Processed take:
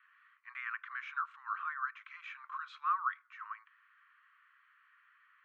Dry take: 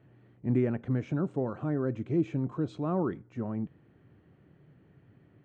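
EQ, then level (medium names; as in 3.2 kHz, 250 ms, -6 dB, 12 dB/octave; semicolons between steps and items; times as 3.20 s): steep high-pass 1.1 kHz 96 dB/octave; Bessel low-pass 1.4 kHz, order 2; +14.0 dB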